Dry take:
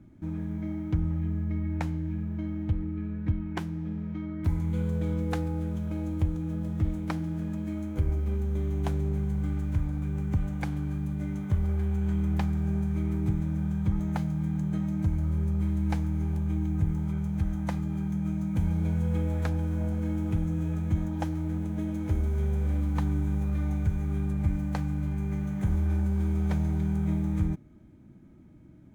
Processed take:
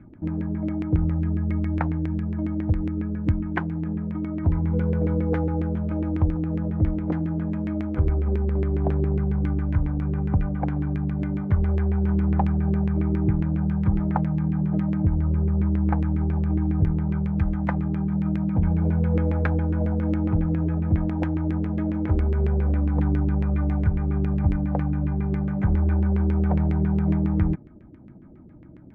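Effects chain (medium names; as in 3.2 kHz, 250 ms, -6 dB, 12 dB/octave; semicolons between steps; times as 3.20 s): LFO low-pass saw down 7.3 Hz 360–2200 Hz; 15.02–15.98 s: treble shelf 2.9 kHz -11 dB; trim +5 dB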